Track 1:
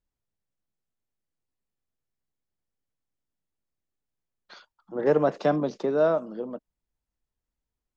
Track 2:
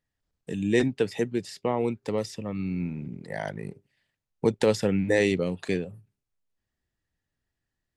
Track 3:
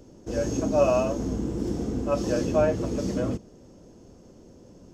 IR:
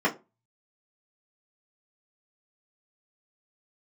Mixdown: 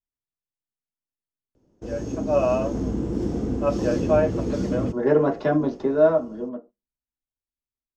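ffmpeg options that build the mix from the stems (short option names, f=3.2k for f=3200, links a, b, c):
-filter_complex "[0:a]dynaudnorm=f=200:g=17:m=5dB,volume=-3.5dB,asplit=2[a][b];[b]volume=-15dB[c];[2:a]dynaudnorm=f=570:g=3:m=7dB,adelay=1550,volume=-3dB[d];[3:a]atrim=start_sample=2205[e];[c][e]afir=irnorm=-1:irlink=0[f];[a][d][f]amix=inputs=3:normalize=0,agate=range=-11dB:threshold=-46dB:ratio=16:detection=peak,highshelf=f=4.9k:g=-11"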